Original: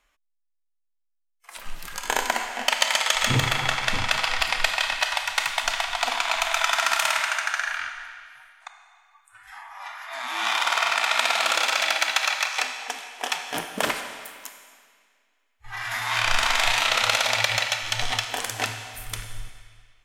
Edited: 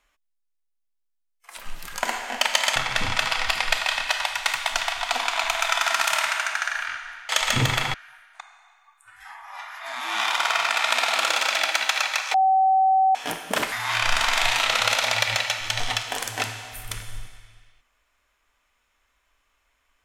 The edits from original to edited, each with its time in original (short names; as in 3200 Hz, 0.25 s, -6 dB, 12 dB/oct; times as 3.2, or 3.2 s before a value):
2.03–2.3 cut
3.03–3.68 move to 8.21
12.61–13.42 bleep 764 Hz -15 dBFS
13.99–15.94 cut